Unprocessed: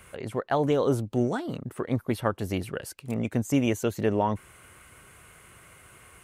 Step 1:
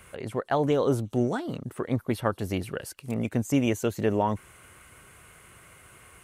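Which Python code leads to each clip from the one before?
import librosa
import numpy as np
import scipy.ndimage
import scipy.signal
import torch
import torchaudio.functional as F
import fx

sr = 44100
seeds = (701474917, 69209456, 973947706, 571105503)

y = fx.echo_wet_highpass(x, sr, ms=177, feedback_pct=71, hz=5100.0, wet_db=-22.5)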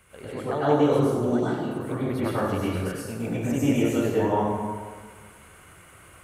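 y = fx.rev_plate(x, sr, seeds[0], rt60_s=1.6, hf_ratio=0.55, predelay_ms=85, drr_db=-9.0)
y = F.gain(torch.from_numpy(y), -7.0).numpy()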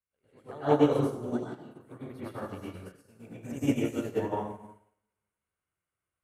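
y = fx.upward_expand(x, sr, threshold_db=-43.0, expansion=2.5)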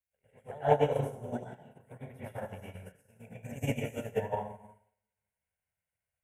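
y = fx.fixed_phaser(x, sr, hz=1200.0, stages=6)
y = fx.transient(y, sr, attack_db=5, sustain_db=-2)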